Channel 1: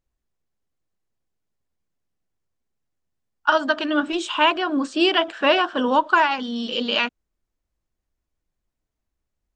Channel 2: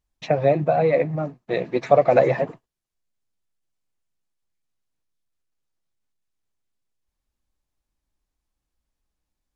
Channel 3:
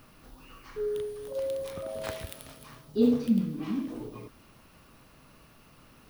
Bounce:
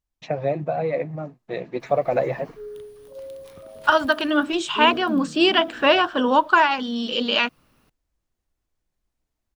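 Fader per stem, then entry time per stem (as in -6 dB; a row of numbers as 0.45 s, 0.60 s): +1.0 dB, -5.5 dB, -5.5 dB; 0.40 s, 0.00 s, 1.80 s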